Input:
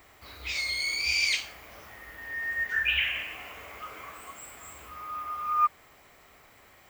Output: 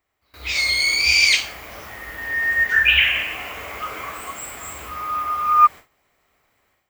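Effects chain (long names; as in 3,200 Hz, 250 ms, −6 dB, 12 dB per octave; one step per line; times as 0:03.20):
automatic gain control gain up to 12 dB
noise gate with hold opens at −32 dBFS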